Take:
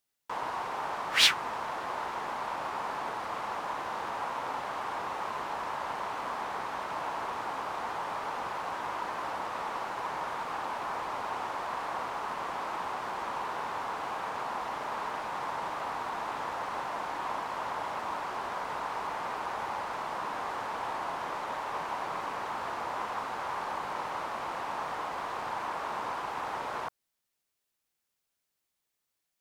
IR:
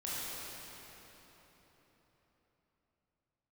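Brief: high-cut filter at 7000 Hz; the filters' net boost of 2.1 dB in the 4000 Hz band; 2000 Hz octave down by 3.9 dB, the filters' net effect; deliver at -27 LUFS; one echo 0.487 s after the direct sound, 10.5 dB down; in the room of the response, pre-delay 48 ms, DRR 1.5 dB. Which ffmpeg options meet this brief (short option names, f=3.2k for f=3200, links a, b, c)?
-filter_complex "[0:a]lowpass=7k,equalizer=f=2k:t=o:g=-6.5,equalizer=f=4k:t=o:g=5,aecho=1:1:487:0.299,asplit=2[a][b];[1:a]atrim=start_sample=2205,adelay=48[c];[b][c]afir=irnorm=-1:irlink=0,volume=-5.5dB[d];[a][d]amix=inputs=2:normalize=0,volume=5dB"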